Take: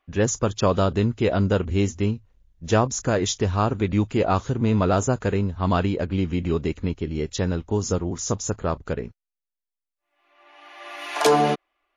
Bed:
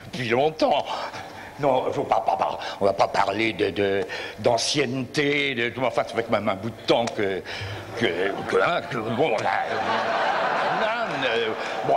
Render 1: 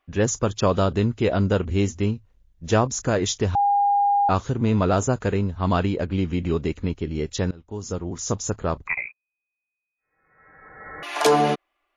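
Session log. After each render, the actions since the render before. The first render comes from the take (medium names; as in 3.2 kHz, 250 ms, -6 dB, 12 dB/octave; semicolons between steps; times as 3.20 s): 3.55–4.29 s: bleep 810 Hz -16 dBFS; 7.51–8.34 s: fade in, from -23 dB; 8.87–11.03 s: frequency inversion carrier 2.5 kHz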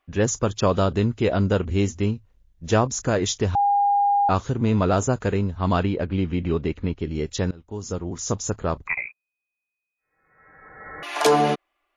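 5.83–7.00 s: low-pass 4.1 kHz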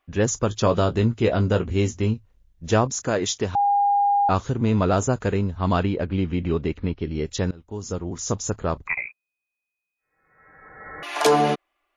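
0.49–2.14 s: doubling 18 ms -9 dB; 2.90–3.68 s: high-pass 190 Hz 6 dB/octave; 6.78–7.25 s: steep low-pass 5.9 kHz 96 dB/octave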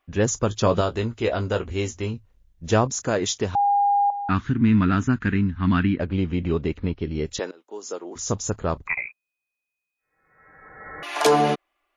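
0.81–2.14 s: peaking EQ 160 Hz -9.5 dB 1.8 oct; 4.10–6.00 s: FFT filter 120 Hz 0 dB, 270 Hz +7 dB, 530 Hz -20 dB, 900 Hz -8 dB, 1.7 kHz +8 dB, 6.4 kHz -11 dB, 9.1 kHz -23 dB; 7.39–8.16 s: high-pass 340 Hz 24 dB/octave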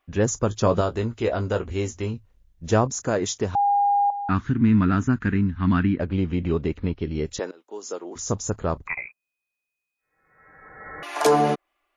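dynamic bell 3.2 kHz, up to -6 dB, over -41 dBFS, Q 0.97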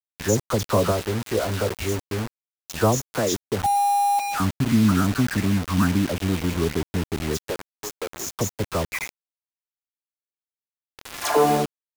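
phase dispersion lows, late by 111 ms, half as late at 1.6 kHz; bit crusher 5-bit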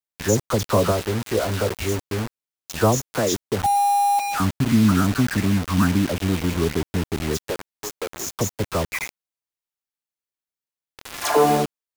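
trim +1.5 dB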